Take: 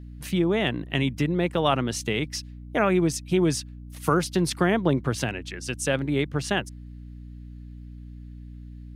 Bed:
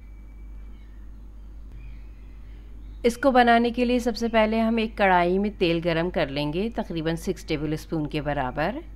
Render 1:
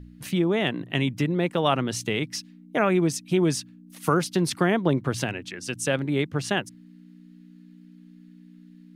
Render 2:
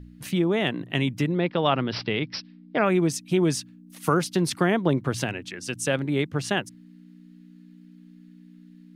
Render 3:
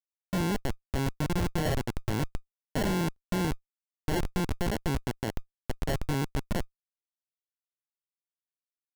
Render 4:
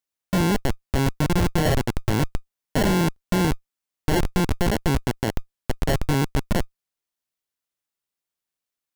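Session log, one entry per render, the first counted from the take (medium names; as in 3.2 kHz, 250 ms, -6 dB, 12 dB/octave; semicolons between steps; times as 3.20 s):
de-hum 60 Hz, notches 2
1.38–2.86 s: careless resampling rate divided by 4×, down none, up filtered
Schmitt trigger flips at -20.5 dBFS; sample-and-hold 36×
trim +8 dB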